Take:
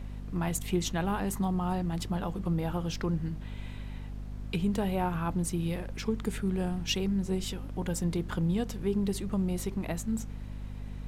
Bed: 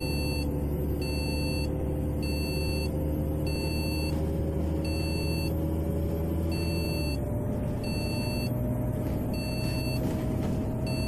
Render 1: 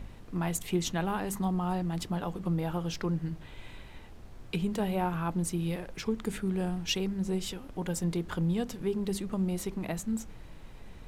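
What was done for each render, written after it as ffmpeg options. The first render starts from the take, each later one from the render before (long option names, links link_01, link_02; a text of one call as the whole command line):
ffmpeg -i in.wav -af "bandreject=frequency=50:width_type=h:width=4,bandreject=frequency=100:width_type=h:width=4,bandreject=frequency=150:width_type=h:width=4,bandreject=frequency=200:width_type=h:width=4,bandreject=frequency=250:width_type=h:width=4" out.wav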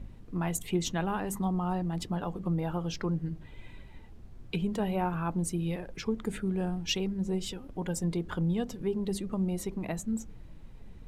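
ffmpeg -i in.wav -af "afftdn=noise_reduction=9:noise_floor=-48" out.wav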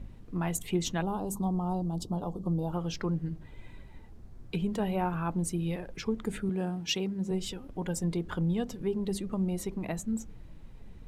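ffmpeg -i in.wav -filter_complex "[0:a]asettb=1/sr,asplit=3[link_01][link_02][link_03];[link_01]atrim=end=1.024[link_04];[link_02]atrim=start=1.02:end=2.73,asetpts=PTS-STARTPTS,afade=type=in:duration=0.004:curve=qsin,afade=type=out:start_time=1.706:duration=0.004:curve=qsin,asuperstop=centerf=2000:order=4:qfactor=0.69[link_05];[link_03]atrim=start=2.726[link_06];[link_04][link_05]acrossfade=duration=0.004:curve1=hsin:curve2=qsin[link_07];[link_07][link_06]acrossfade=duration=0.004:curve1=qsin:curve2=hsin,asettb=1/sr,asplit=3[link_08][link_09][link_10];[link_08]atrim=end=3.364[link_11];[link_09]atrim=start=3.36:end=4.56,asetpts=PTS-STARTPTS,afade=type=in:duration=0.004:curve=qsin,afade=type=out:start_time=1.196:duration=0.004:curve=qsin,equalizer=frequency=2900:width=1.5:gain=-5[link_12];[link_10]atrim=start=4.556[link_13];[link_11][link_12]acrossfade=duration=0.004:curve1=hsin:curve2=qsin[link_14];[link_14][link_13]acrossfade=duration=0.004:curve1=qsin:curve2=hsin,asettb=1/sr,asplit=3[link_15][link_16][link_17];[link_15]atrim=end=6.494[link_18];[link_16]atrim=start=6.49:end=7.31,asetpts=PTS-STARTPTS,afade=type=in:duration=0.004:curve=qsin,afade=type=out:start_time=0.816:duration=0.004:curve=qsin,highpass=130[link_19];[link_17]atrim=start=7.306[link_20];[link_18][link_19]acrossfade=duration=0.004:curve1=hsin:curve2=qsin[link_21];[link_21][link_20]acrossfade=duration=0.004:curve1=qsin:curve2=hsin" out.wav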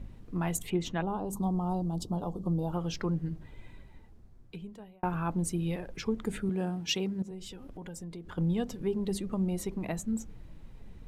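ffmpeg -i in.wav -filter_complex "[0:a]asettb=1/sr,asplit=3[link_01][link_02][link_03];[link_01]atrim=end=0.704[link_04];[link_02]atrim=start=0.7:end=1.33,asetpts=PTS-STARTPTS,afade=type=in:duration=0.004:curve=qsin,afade=type=out:start_time=0.626:duration=0.004:curve=qsin,bass=frequency=250:gain=-2,treble=frequency=4000:gain=-11[link_05];[link_03]atrim=start=1.326[link_06];[link_04][link_05]acrossfade=duration=0.004:curve1=hsin:curve2=qsin[link_07];[link_07][link_06]acrossfade=duration=0.004:curve1=qsin:curve2=hsin,asettb=1/sr,asplit=3[link_08][link_09][link_10];[link_08]atrim=end=7.224[link_11];[link_09]atrim=start=7.22:end=8.38,asetpts=PTS-STARTPTS,afade=type=in:duration=0.004:curve=qsin,afade=type=out:start_time=1.156:duration=0.004:curve=qsin,acompressor=threshold=-41dB:ratio=4:attack=3.2:release=140:knee=1:detection=peak[link_12];[link_10]atrim=start=8.376[link_13];[link_11][link_12]acrossfade=duration=0.004:curve1=hsin:curve2=qsin[link_14];[link_14][link_13]acrossfade=duration=0.004:curve1=qsin:curve2=hsin,asplit=2[link_15][link_16];[link_15]atrim=end=5.03,asetpts=PTS-STARTPTS,afade=type=out:start_time=3.4:duration=1.63[link_17];[link_16]atrim=start=5.03,asetpts=PTS-STARTPTS,afade=type=in:duration=0.004:curve=hsin[link_18];[link_17][link_18]concat=n=2:v=0:a=1" out.wav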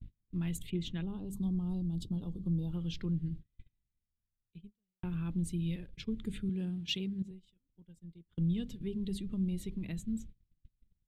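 ffmpeg -i in.wav -af "agate=range=-34dB:threshold=-40dB:ratio=16:detection=peak,firequalizer=gain_entry='entry(120,0);entry(720,-24);entry(2000,-9);entry(3500,0);entry(5500,-13);entry(8200,-10)':delay=0.05:min_phase=1" out.wav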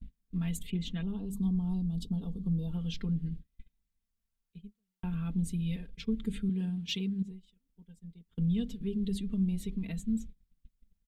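ffmpeg -i in.wav -af "aecho=1:1:4.4:0.78" out.wav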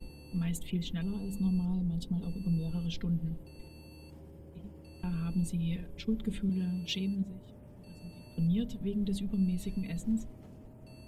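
ffmpeg -i in.wav -i bed.wav -filter_complex "[1:a]volume=-22dB[link_01];[0:a][link_01]amix=inputs=2:normalize=0" out.wav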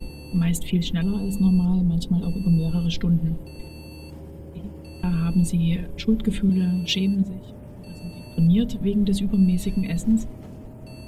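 ffmpeg -i in.wav -af "volume=11.5dB" out.wav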